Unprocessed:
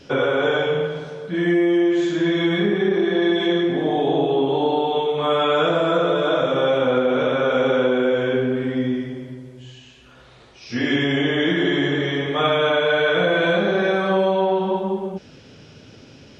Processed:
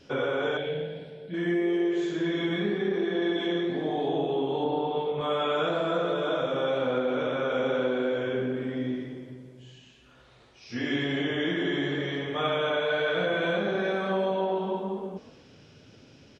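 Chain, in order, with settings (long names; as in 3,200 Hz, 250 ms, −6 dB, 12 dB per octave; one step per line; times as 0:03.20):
0:04.64–0:05.21: bass and treble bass +6 dB, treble −12 dB
flanger 0.98 Hz, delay 2.6 ms, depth 9 ms, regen −88%
0:00.57–0:01.34: phaser with its sweep stopped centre 2,800 Hz, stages 4
echo with shifted repeats 124 ms, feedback 51%, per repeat +48 Hz, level −18 dB
level −4 dB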